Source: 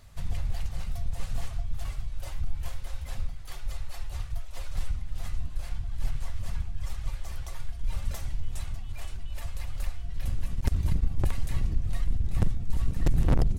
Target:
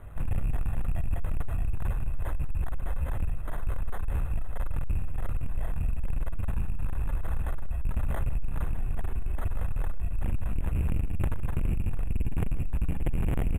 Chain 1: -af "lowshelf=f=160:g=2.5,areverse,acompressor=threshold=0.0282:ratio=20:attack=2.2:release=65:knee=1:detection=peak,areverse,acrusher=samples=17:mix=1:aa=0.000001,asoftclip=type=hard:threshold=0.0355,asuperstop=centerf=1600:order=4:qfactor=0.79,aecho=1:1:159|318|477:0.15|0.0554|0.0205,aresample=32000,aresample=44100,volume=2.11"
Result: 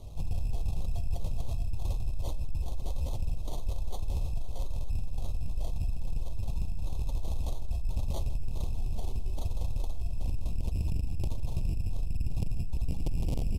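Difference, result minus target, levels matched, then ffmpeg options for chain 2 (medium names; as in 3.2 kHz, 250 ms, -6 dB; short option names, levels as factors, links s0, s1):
4 kHz band +9.5 dB; compression: peak gain reduction +7.5 dB
-af "lowshelf=f=160:g=2.5,areverse,acompressor=threshold=0.0708:ratio=20:attack=2.2:release=65:knee=1:detection=peak,areverse,acrusher=samples=17:mix=1:aa=0.000001,asoftclip=type=hard:threshold=0.0355,asuperstop=centerf=5100:order=4:qfactor=0.79,aecho=1:1:159|318|477:0.15|0.0554|0.0205,aresample=32000,aresample=44100,volume=2.11"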